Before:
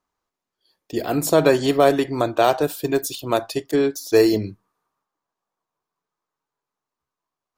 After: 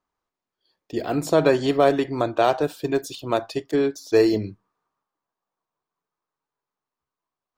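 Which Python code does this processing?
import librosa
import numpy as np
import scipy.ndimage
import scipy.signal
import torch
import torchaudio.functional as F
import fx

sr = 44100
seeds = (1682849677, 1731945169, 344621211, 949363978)

y = fx.peak_eq(x, sr, hz=13000.0, db=-14.0, octaves=1.1)
y = y * librosa.db_to_amplitude(-2.0)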